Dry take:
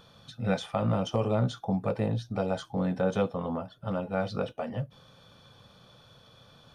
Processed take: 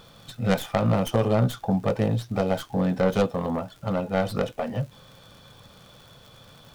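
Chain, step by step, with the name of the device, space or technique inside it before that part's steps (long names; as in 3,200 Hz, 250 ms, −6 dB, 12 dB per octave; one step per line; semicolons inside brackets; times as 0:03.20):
record under a worn stylus (stylus tracing distortion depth 0.21 ms; surface crackle 73 per second −45 dBFS; pink noise bed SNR 34 dB)
level +5 dB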